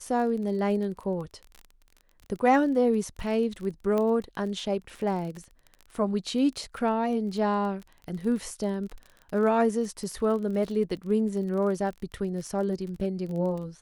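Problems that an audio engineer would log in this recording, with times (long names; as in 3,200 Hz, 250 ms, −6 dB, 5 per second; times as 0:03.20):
surface crackle 28 per second −35 dBFS
0:03.98: click −17 dBFS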